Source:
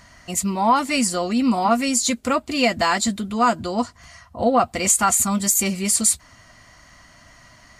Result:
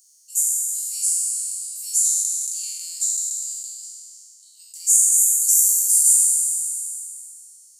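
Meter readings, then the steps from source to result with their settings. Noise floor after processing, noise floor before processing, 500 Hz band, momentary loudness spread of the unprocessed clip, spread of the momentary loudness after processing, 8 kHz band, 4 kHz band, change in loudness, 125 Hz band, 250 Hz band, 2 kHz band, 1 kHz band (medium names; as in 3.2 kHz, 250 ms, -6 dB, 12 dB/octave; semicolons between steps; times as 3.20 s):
-51 dBFS, -50 dBFS, under -40 dB, 7 LU, 16 LU, +6.5 dB, -9.0 dB, +2.5 dB, under -40 dB, under -40 dB, under -30 dB, under -40 dB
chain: spectral sustain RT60 2.22 s; inverse Chebyshev high-pass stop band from 1.3 kHz, stop band 80 dB; in parallel at +1 dB: compression, threshold -29 dBFS, peak gain reduction 16 dB; on the sum: trim -1 dB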